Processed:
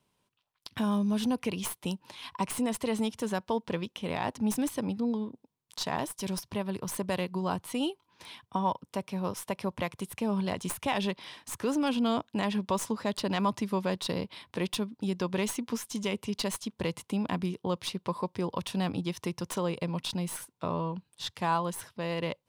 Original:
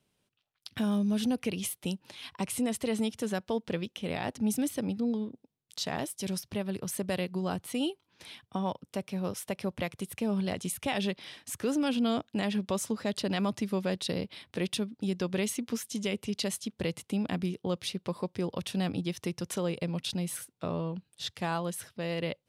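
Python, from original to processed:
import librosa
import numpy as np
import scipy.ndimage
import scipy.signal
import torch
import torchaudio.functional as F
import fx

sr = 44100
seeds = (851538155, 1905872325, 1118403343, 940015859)

y = fx.tracing_dist(x, sr, depth_ms=0.026)
y = fx.peak_eq(y, sr, hz=990.0, db=11.0, octaves=0.37)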